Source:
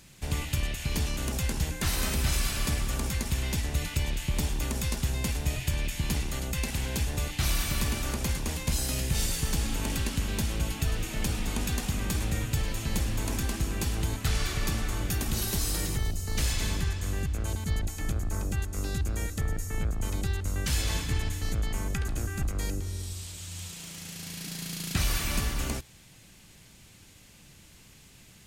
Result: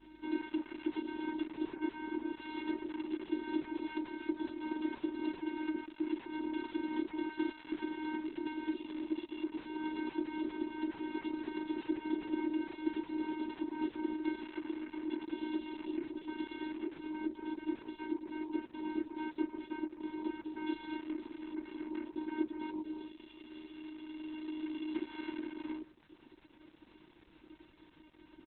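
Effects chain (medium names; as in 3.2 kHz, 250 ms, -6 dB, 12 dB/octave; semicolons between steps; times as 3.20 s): compression 16:1, threshold -28 dBFS, peak gain reduction 7.5 dB; on a send at -3 dB: reverberation RT60 0.85 s, pre-delay 6 ms; on the sum: vocoder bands 4, square 310 Hz; hum 50 Hz, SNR 29 dB; tone controls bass -9 dB, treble -15 dB; thinning echo 63 ms, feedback 41%, high-pass 510 Hz, level -22.5 dB; crackle 220 per s -52 dBFS; 1.75–2.40 s: distance through air 340 m; reverb removal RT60 0.54 s; comb 5 ms, depth 50%; trim +4.5 dB; Opus 8 kbps 48 kHz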